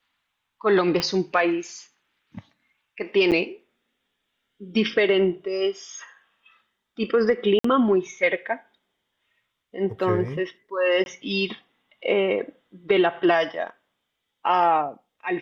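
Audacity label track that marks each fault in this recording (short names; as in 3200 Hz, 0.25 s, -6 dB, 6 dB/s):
1.000000	1.000000	pop -11 dBFS
3.310000	3.320000	gap 8.1 ms
7.590000	7.640000	gap 54 ms
11.040000	11.060000	gap 21 ms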